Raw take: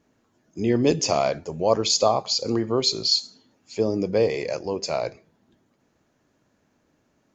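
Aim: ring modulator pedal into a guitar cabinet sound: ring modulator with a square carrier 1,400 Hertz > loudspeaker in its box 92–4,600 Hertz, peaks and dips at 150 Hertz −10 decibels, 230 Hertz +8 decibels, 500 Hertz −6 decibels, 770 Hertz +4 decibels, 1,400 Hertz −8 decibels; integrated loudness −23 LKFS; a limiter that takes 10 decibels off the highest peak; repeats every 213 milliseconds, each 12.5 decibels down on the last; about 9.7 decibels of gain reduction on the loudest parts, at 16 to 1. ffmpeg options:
ffmpeg -i in.wav -af "acompressor=threshold=-24dB:ratio=16,alimiter=limit=-24dB:level=0:latency=1,aecho=1:1:213|426|639:0.237|0.0569|0.0137,aeval=exprs='val(0)*sgn(sin(2*PI*1400*n/s))':channel_layout=same,highpass=92,equalizer=frequency=150:width_type=q:width=4:gain=-10,equalizer=frequency=230:width_type=q:width=4:gain=8,equalizer=frequency=500:width_type=q:width=4:gain=-6,equalizer=frequency=770:width_type=q:width=4:gain=4,equalizer=frequency=1400:width_type=q:width=4:gain=-8,lowpass=frequency=4600:width=0.5412,lowpass=frequency=4600:width=1.3066,volume=11.5dB" out.wav

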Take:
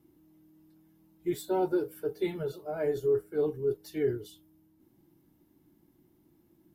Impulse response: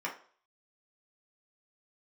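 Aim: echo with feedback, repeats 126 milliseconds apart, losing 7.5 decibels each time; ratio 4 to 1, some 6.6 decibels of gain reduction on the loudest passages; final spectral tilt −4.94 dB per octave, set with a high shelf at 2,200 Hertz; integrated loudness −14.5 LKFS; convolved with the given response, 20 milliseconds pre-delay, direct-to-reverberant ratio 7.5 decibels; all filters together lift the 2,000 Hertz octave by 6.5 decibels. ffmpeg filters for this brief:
-filter_complex "[0:a]equalizer=frequency=2000:width_type=o:gain=4.5,highshelf=frequency=2200:gain=7,acompressor=threshold=-31dB:ratio=4,aecho=1:1:126|252|378|504|630:0.422|0.177|0.0744|0.0312|0.0131,asplit=2[link_01][link_02];[1:a]atrim=start_sample=2205,adelay=20[link_03];[link_02][link_03]afir=irnorm=-1:irlink=0,volume=-12.5dB[link_04];[link_01][link_04]amix=inputs=2:normalize=0,volume=20.5dB"

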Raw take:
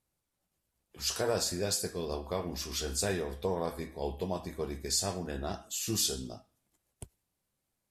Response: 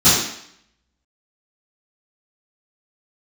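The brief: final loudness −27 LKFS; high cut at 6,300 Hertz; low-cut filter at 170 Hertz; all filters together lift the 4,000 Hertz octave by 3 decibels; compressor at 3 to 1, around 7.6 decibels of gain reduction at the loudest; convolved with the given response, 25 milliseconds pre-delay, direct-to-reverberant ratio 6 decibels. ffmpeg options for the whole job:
-filter_complex "[0:a]highpass=170,lowpass=6300,equalizer=frequency=4000:width_type=o:gain=5,acompressor=threshold=-36dB:ratio=3,asplit=2[link_01][link_02];[1:a]atrim=start_sample=2205,adelay=25[link_03];[link_02][link_03]afir=irnorm=-1:irlink=0,volume=-29dB[link_04];[link_01][link_04]amix=inputs=2:normalize=0,volume=10dB"

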